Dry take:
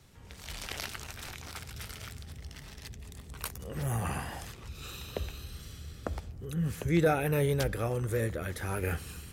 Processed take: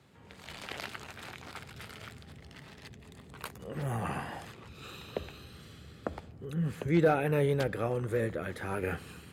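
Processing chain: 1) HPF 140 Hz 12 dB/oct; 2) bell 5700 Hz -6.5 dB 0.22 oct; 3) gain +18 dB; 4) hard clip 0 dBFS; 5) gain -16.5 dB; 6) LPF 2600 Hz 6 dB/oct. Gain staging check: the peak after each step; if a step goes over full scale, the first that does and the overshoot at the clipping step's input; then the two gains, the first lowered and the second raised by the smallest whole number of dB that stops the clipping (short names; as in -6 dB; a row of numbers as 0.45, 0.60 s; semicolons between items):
-14.0, -14.0, +4.0, 0.0, -16.5, -16.5 dBFS; step 3, 4.0 dB; step 3 +14 dB, step 5 -12.5 dB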